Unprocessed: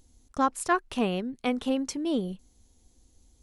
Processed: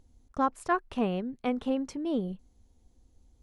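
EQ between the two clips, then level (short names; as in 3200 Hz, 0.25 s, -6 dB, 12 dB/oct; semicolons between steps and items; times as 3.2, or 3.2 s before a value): bell 320 Hz -2.5 dB 0.93 oct; high shelf 2000 Hz -9 dB; high shelf 5700 Hz -6.5 dB; 0.0 dB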